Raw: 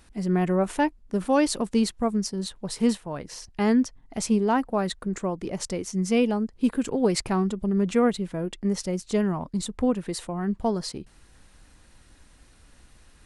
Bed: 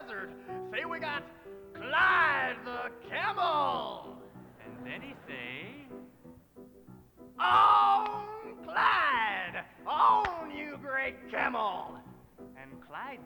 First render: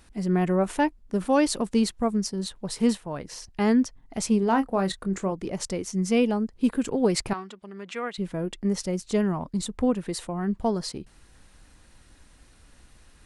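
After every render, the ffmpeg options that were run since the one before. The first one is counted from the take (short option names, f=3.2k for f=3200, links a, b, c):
-filter_complex "[0:a]asettb=1/sr,asplit=3[a][b][c];[a]atrim=end=4.404[d];[b]atrim=start=4.4:end=5.32,asetpts=PTS-STARTPTS,afade=t=in:d=0.004:c=qsin,afade=t=out:st=0.916:d=0.004:c=qsin,asplit=2[e][f];[f]adelay=26,volume=-10dB[g];[e][g]amix=inputs=2:normalize=0,atrim=end_sample=40572[h];[c]atrim=start=5.316[i];[d][h]acrossfade=d=0.004:c1=hsin:c2=qsin[j];[j][i]acrossfade=d=0.004:c1=qsin:c2=hsin,asettb=1/sr,asplit=3[k][l][m];[k]atrim=end=7.334[n];[l]atrim=start=7.33:end=8.18,asetpts=PTS-STARTPTS,afade=t=in:d=0.004:c=qsin,afade=t=out:st=0.846:d=0.004:c=qsin,bandpass=f=2.4k:t=q:w=0.73[o];[m]atrim=start=8.176[p];[n][o]acrossfade=d=0.004:c1=hsin:c2=qsin[q];[q][p]acrossfade=d=0.004:c1=qsin:c2=hsin"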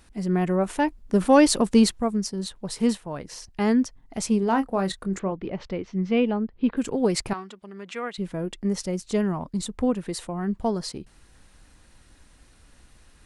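-filter_complex "[0:a]asplit=3[a][b][c];[a]afade=t=out:st=0.87:d=0.02[d];[b]acontrast=48,afade=t=in:st=0.87:d=0.02,afade=t=out:st=1.97:d=0.02[e];[c]afade=t=in:st=1.97:d=0.02[f];[d][e][f]amix=inputs=3:normalize=0,asettb=1/sr,asplit=3[g][h][i];[g]atrim=end=5.194[j];[h]atrim=start=5.19:end=6.77,asetpts=PTS-STARTPTS,afade=t=in:d=0.004:c=qsin,afade=t=out:st=1.576:d=0.004:c=qsin,lowpass=f=3.5k:w=0.5412,lowpass=f=3.5k:w=1.3066[k];[i]atrim=start=6.766[l];[j][k]acrossfade=d=0.004:c1=hsin:c2=qsin[m];[m][l]acrossfade=d=0.004:c1=qsin:c2=hsin"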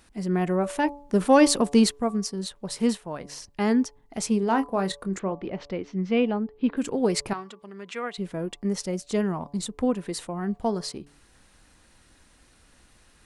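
-af "lowshelf=f=110:g=-7.5,bandreject=f=143.3:t=h:w=4,bandreject=f=286.6:t=h:w=4,bandreject=f=429.9:t=h:w=4,bandreject=f=573.2:t=h:w=4,bandreject=f=716.5:t=h:w=4,bandreject=f=859.8:t=h:w=4,bandreject=f=1.0031k:t=h:w=4,bandreject=f=1.1464k:t=h:w=4"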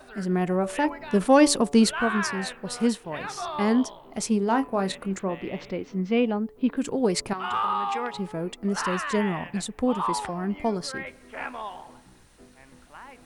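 -filter_complex "[1:a]volume=-4dB[a];[0:a][a]amix=inputs=2:normalize=0"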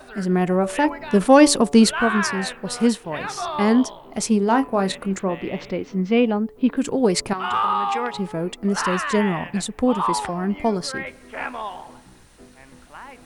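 -af "volume=5dB,alimiter=limit=-3dB:level=0:latency=1"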